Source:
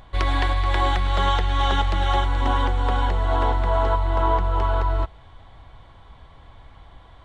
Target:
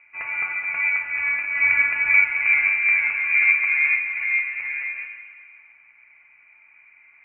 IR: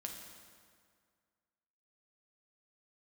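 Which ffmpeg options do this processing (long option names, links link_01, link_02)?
-filter_complex "[0:a]asettb=1/sr,asplit=3[link_01][link_02][link_03];[link_01]atrim=end=1.554[link_04];[link_02]atrim=start=1.55:end=3.99,asetpts=PTS-STARTPTS,afade=type=in:duration=0.004:curve=qsin,afade=type=out:start_time=2.436:duration=0.004:curve=qsin,acontrast=36[link_05];[link_03]atrim=start=3.986[link_06];[link_04][link_05]acrossfade=duration=0.004:curve1=hsin:curve2=qsin[link_07];[link_07][link_06]acrossfade=duration=0.004:curve1=qsin:curve2=hsin,highpass=frequency=720:width_type=q:width=4.9[link_08];[1:a]atrim=start_sample=2205[link_09];[link_08][link_09]afir=irnorm=-1:irlink=0,lowpass=frequency=2600:width_type=q:width=0.5098,lowpass=frequency=2600:width_type=q:width=0.6013,lowpass=frequency=2600:width_type=q:width=0.9,lowpass=frequency=2600:width_type=q:width=2.563,afreqshift=-3100,volume=-5dB"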